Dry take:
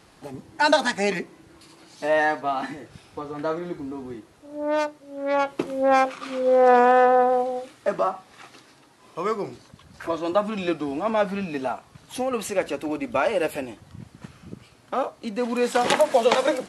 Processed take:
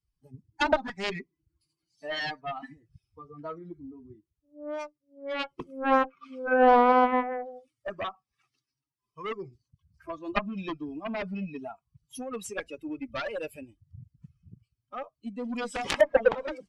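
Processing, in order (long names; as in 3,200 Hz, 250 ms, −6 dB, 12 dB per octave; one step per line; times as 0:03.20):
spectral dynamics exaggerated over time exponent 2
harmonic generator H 3 −24 dB, 5 −27 dB, 7 −11 dB, 8 −36 dB, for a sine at −8 dBFS
treble cut that deepens with the level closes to 1,300 Hz, closed at −20.5 dBFS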